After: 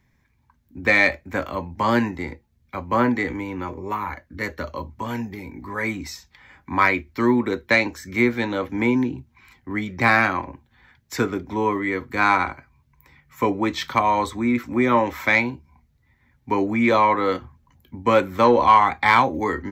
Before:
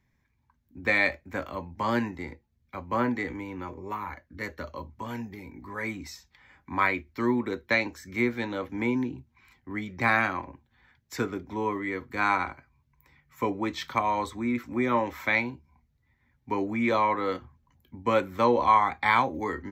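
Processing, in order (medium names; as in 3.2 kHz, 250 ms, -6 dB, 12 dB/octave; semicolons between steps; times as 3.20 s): saturation -10.5 dBFS, distortion -23 dB; trim +7.5 dB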